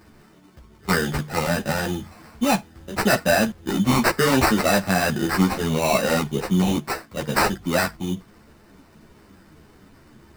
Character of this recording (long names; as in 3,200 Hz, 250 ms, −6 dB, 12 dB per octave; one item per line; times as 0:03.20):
aliases and images of a low sample rate 3,300 Hz, jitter 0%
a shimmering, thickened sound